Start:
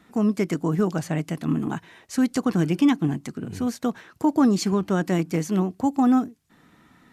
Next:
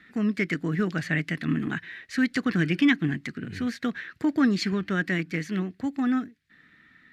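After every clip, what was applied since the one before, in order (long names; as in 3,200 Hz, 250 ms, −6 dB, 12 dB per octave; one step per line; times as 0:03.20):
drawn EQ curve 280 Hz 0 dB, 640 Hz −6 dB, 920 Hz −11 dB, 1,800 Hz +13 dB, 3,000 Hz −2 dB, 6,100 Hz −10 dB
speech leveller 2 s
parametric band 4,000 Hz +11.5 dB 1.2 octaves
level −4.5 dB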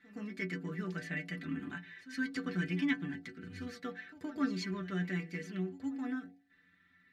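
stiff-string resonator 88 Hz, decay 0.25 s, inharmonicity 0.008
hum removal 55.71 Hz, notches 17
backwards echo 118 ms −16 dB
level −3 dB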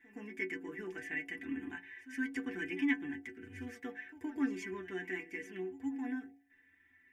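phaser with its sweep stopped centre 850 Hz, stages 8
level +2 dB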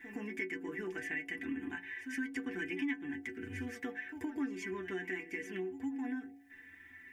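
downward compressor 2.5 to 1, threshold −54 dBFS, peak gain reduction 18 dB
level +12 dB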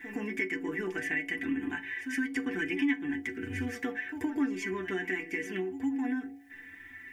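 convolution reverb, pre-delay 7 ms, DRR 14 dB
level +6.5 dB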